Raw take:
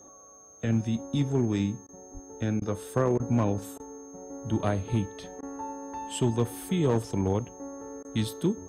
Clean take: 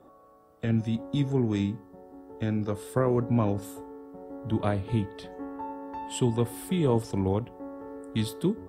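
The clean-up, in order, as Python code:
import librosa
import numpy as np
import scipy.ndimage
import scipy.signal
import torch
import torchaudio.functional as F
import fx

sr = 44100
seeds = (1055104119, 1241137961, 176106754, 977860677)

y = fx.fix_declip(x, sr, threshold_db=-17.0)
y = fx.notch(y, sr, hz=6400.0, q=30.0)
y = fx.highpass(y, sr, hz=140.0, slope=24, at=(2.13, 2.25), fade=0.02)
y = fx.fix_interpolate(y, sr, at_s=(1.87, 2.6, 3.18, 3.78, 5.41, 8.03), length_ms=16.0)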